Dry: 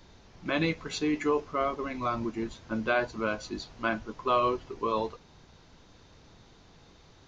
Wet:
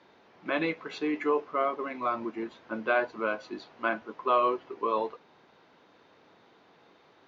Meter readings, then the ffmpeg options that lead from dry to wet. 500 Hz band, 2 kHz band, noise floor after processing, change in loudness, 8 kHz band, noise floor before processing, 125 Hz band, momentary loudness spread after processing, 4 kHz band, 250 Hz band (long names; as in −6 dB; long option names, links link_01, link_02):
+0.5 dB, +0.5 dB, −61 dBFS, +0.5 dB, can't be measured, −57 dBFS, −11.5 dB, 11 LU, −5.0 dB, −2.5 dB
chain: -af "highpass=320,lowpass=2600,volume=1.5dB"